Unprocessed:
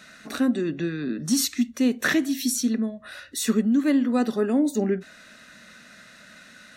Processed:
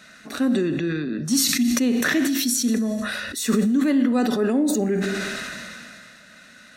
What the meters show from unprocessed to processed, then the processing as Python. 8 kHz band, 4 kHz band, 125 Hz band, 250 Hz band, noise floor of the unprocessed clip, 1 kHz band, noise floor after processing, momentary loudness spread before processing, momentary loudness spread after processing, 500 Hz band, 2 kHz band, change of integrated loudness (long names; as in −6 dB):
+4.5 dB, +5.0 dB, +4.5 dB, +2.5 dB, −50 dBFS, +3.5 dB, −48 dBFS, 9 LU, 10 LU, +2.5 dB, +3.5 dB, +2.5 dB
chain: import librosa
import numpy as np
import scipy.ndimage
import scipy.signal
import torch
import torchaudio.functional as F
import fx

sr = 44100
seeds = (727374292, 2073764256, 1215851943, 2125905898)

y = fx.rev_schroeder(x, sr, rt60_s=0.97, comb_ms=26, drr_db=12.5)
y = fx.sustainer(y, sr, db_per_s=22.0)